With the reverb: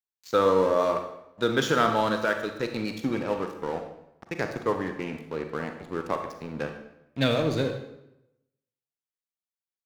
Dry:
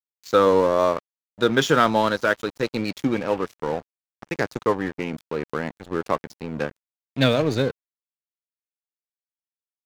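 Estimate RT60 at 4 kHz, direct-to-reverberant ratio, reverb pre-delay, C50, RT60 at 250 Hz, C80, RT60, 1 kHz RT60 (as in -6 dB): 0.70 s, 5.0 dB, 33 ms, 6.5 dB, 0.95 s, 9.5 dB, 0.85 s, 0.85 s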